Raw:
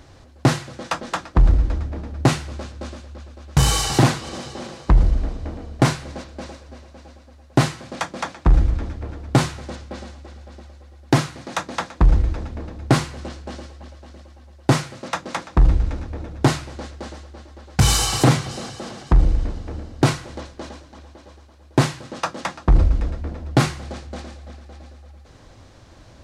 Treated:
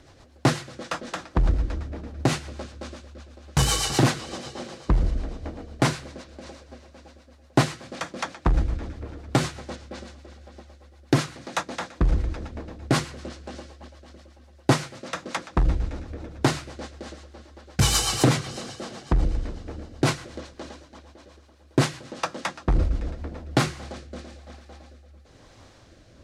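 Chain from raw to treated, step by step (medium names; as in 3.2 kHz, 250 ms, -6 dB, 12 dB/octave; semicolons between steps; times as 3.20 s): bass shelf 210 Hz -6 dB; 6.04–6.47 s: compression, threshold -34 dBFS, peak gain reduction 5 dB; rotary cabinet horn 8 Hz, later 1 Hz, at 23.09 s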